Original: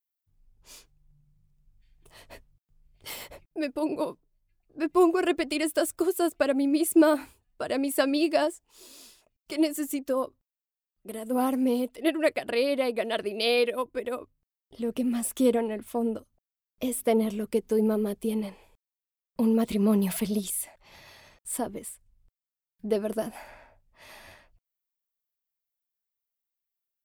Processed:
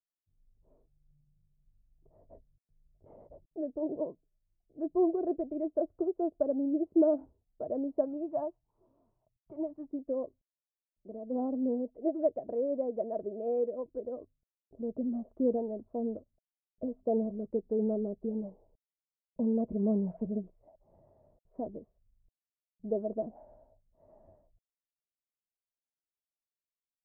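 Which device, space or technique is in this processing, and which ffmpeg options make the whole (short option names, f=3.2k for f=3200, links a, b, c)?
under water: -filter_complex "[0:a]asplit=3[a][b][c];[a]afade=t=out:st=8.04:d=0.02[d];[b]equalizer=f=125:t=o:w=1:g=10,equalizer=f=250:t=o:w=1:g=-6,equalizer=f=500:t=o:w=1:g=-10,equalizer=f=1k:t=o:w=1:g=9,equalizer=f=4k:t=o:w=1:g=4,afade=t=in:st=8.04:d=0.02,afade=t=out:st=9.87:d=0.02[e];[c]afade=t=in:st=9.87:d=0.02[f];[d][e][f]amix=inputs=3:normalize=0,lowpass=f=650:w=0.5412,lowpass=f=650:w=1.3066,equalizer=f=640:t=o:w=0.24:g=6.5,volume=-6dB"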